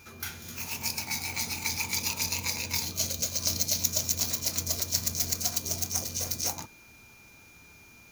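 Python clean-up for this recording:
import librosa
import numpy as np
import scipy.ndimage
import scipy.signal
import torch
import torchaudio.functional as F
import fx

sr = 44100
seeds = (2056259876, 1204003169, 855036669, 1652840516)

y = fx.notch(x, sr, hz=2400.0, q=30.0)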